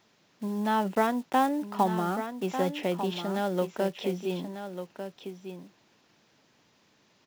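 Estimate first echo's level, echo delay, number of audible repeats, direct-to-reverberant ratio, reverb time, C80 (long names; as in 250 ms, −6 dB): −9.5 dB, 1,196 ms, 1, no reverb audible, no reverb audible, no reverb audible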